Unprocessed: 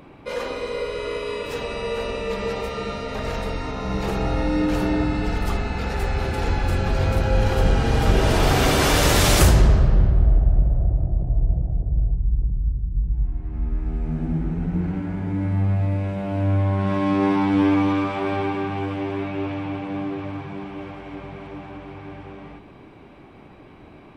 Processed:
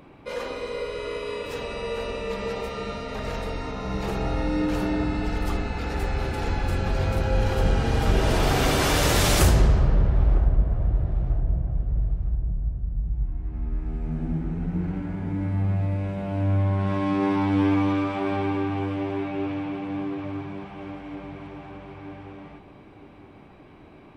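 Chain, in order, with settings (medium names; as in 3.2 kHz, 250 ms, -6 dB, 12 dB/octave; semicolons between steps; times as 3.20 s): feedback echo behind a low-pass 952 ms, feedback 34%, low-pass 1.2 kHz, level -13 dB; trim -3.5 dB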